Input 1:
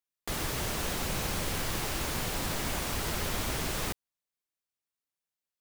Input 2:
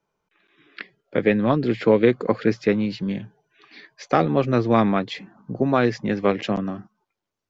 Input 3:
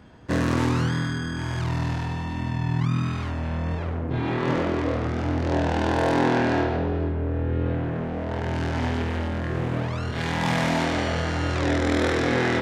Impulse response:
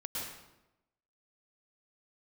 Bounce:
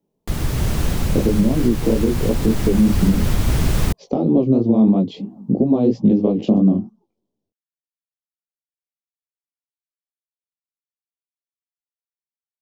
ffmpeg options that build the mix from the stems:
-filter_complex "[0:a]lowshelf=frequency=350:gain=10,volume=0.5dB[link_01];[1:a]acompressor=threshold=-20dB:ratio=6,firequalizer=gain_entry='entry(120,0);entry(220,12);entry(1000,-4);entry(1600,-28);entry(3000,-6)':delay=0.05:min_phase=1,flanger=delay=16:depth=7.1:speed=3,volume=-0.5dB[link_02];[link_01][link_02]amix=inputs=2:normalize=0,bass=frequency=250:gain=6,treble=frequency=4000:gain=0,dynaudnorm=framelen=110:gausssize=11:maxgain=11.5dB,alimiter=limit=-6dB:level=0:latency=1:release=193"

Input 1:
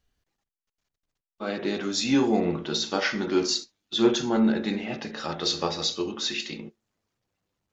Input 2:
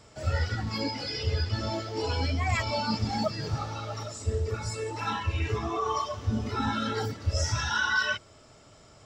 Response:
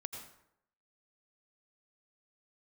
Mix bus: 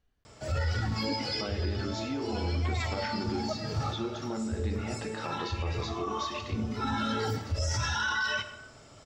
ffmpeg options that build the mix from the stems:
-filter_complex "[0:a]acompressor=threshold=-33dB:ratio=6,highshelf=frequency=3600:gain=-11.5,volume=0.5dB,asplit=2[link_01][link_02];[1:a]adelay=250,volume=-1.5dB,asplit=2[link_03][link_04];[link_04]volume=-4.5dB[link_05];[link_02]apad=whole_len=410323[link_06];[link_03][link_06]sidechaincompress=threshold=-48dB:ratio=8:attack=16:release=306[link_07];[2:a]atrim=start_sample=2205[link_08];[link_05][link_08]afir=irnorm=-1:irlink=0[link_09];[link_01][link_07][link_09]amix=inputs=3:normalize=0,alimiter=limit=-22dB:level=0:latency=1:release=22"

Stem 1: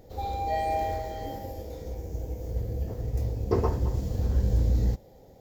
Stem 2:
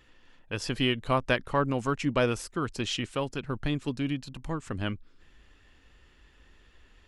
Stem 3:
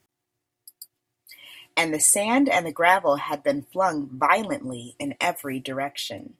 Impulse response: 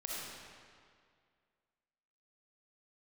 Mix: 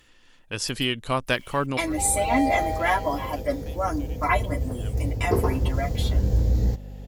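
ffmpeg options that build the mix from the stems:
-filter_complex "[0:a]aeval=exprs='val(0)+0.0112*(sin(2*PI*50*n/s)+sin(2*PI*2*50*n/s)/2+sin(2*PI*3*50*n/s)/3+sin(2*PI*4*50*n/s)/4+sin(2*PI*5*50*n/s)/5)':channel_layout=same,adelay=1800,volume=2.5dB[link_01];[1:a]equalizer=frequency=11000:width=0.32:gain=11.5,volume=0.5dB[link_02];[2:a]aecho=1:1:3:0.65,acrusher=bits=9:dc=4:mix=0:aa=0.000001,asplit=2[link_03][link_04];[link_04]adelay=7.9,afreqshift=-0.92[link_05];[link_03][link_05]amix=inputs=2:normalize=1,volume=-3dB,asplit=2[link_06][link_07];[link_07]apad=whole_len=311970[link_08];[link_02][link_08]sidechaincompress=threshold=-40dB:ratio=8:attack=16:release=1310[link_09];[link_01][link_09][link_06]amix=inputs=3:normalize=0"

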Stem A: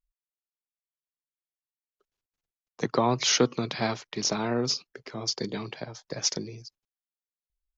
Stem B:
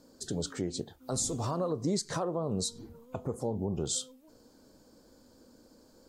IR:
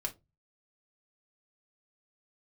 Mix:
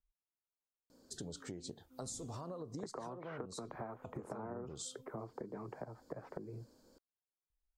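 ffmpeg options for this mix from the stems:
-filter_complex "[0:a]lowpass=frequency=1300:width=0.5412,lowpass=frequency=1300:width=1.3066,acrossover=split=350|950[link_01][link_02][link_03];[link_01]acompressor=threshold=-39dB:ratio=4[link_04];[link_02]acompressor=threshold=-30dB:ratio=4[link_05];[link_03]acompressor=threshold=-38dB:ratio=4[link_06];[link_04][link_05][link_06]amix=inputs=3:normalize=0,volume=-1dB[link_07];[1:a]adelay=900,volume=-6.5dB[link_08];[link_07][link_08]amix=inputs=2:normalize=0,acompressor=threshold=-41dB:ratio=12"

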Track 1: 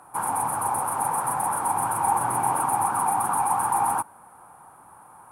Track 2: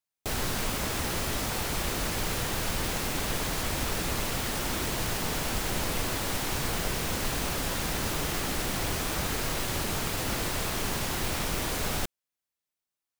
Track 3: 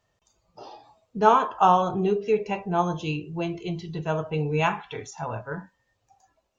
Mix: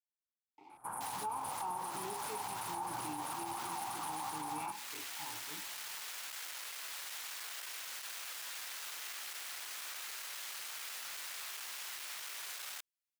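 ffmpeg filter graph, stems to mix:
ffmpeg -i stem1.wav -i stem2.wav -i stem3.wav -filter_complex "[0:a]tremolo=f=120:d=0.261,adelay=700,volume=-12.5dB[link_01];[1:a]asoftclip=type=tanh:threshold=-31dB,highpass=1400,adelay=750,volume=-6dB[link_02];[2:a]equalizer=frequency=230:width_type=o:width=0.41:gain=-12.5,acrusher=bits=6:mix=0:aa=0.000001,asplit=3[link_03][link_04][link_05];[link_03]bandpass=frequency=300:width_type=q:width=8,volume=0dB[link_06];[link_04]bandpass=frequency=870:width_type=q:width=8,volume=-6dB[link_07];[link_05]bandpass=frequency=2240:width_type=q:width=8,volume=-9dB[link_08];[link_06][link_07][link_08]amix=inputs=3:normalize=0,volume=-4dB,asplit=2[link_09][link_10];[link_10]apad=whole_len=614828[link_11];[link_02][link_11]sidechaincompress=threshold=-41dB:ratio=4:attack=16:release=304[link_12];[link_01][link_12][link_09]amix=inputs=3:normalize=0,alimiter=level_in=7dB:limit=-24dB:level=0:latency=1:release=75,volume=-7dB" out.wav

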